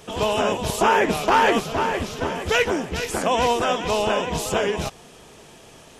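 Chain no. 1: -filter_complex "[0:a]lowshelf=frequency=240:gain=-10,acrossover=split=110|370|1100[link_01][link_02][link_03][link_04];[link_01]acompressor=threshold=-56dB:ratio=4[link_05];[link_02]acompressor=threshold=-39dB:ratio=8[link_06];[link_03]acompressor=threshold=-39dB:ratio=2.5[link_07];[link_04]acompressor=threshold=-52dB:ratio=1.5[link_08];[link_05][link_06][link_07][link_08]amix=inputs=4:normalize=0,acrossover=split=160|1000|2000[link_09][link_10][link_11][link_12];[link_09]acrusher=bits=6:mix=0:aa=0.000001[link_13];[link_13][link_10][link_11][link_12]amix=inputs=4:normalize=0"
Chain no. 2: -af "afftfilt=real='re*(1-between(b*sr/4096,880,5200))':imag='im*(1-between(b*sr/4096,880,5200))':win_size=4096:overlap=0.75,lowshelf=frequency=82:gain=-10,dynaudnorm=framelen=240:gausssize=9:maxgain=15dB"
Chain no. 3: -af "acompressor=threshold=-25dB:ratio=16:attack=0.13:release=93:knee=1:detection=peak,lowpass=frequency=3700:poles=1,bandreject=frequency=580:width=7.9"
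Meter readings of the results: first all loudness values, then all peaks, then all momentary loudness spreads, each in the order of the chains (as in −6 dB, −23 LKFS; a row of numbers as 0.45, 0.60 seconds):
−32.5, −16.5, −33.0 LKFS; −18.0, −1.5, −22.5 dBFS; 18, 10, 16 LU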